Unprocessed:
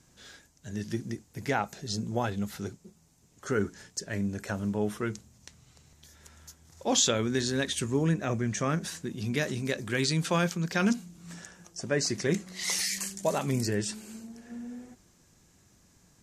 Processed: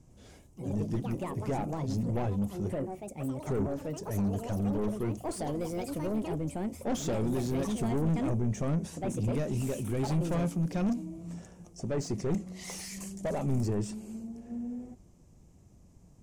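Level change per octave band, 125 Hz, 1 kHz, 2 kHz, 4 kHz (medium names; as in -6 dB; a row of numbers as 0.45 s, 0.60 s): +1.5 dB, -3.5 dB, -13.0 dB, -14.5 dB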